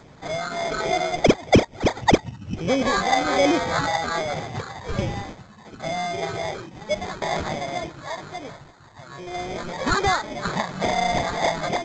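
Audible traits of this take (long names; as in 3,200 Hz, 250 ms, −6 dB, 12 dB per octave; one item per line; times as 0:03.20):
phaser sweep stages 12, 1.2 Hz, lowest notch 460–2,200 Hz
aliases and images of a low sample rate 2,800 Hz, jitter 0%
G.722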